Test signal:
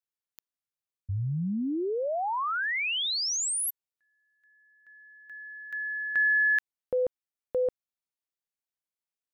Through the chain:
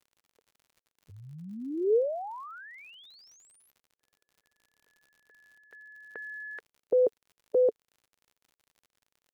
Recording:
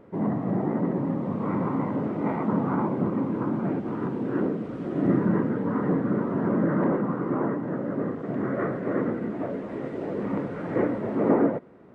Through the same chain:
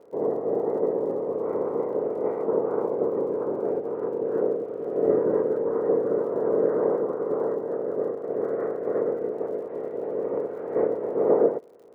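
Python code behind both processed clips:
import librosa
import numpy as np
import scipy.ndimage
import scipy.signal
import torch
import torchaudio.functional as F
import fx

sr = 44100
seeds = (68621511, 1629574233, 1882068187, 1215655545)

y = fx.spec_clip(x, sr, under_db=14)
y = fx.bandpass_q(y, sr, hz=450.0, q=5.2)
y = fx.dmg_crackle(y, sr, seeds[0], per_s=69.0, level_db=-59.0)
y = y * librosa.db_to_amplitude(9.0)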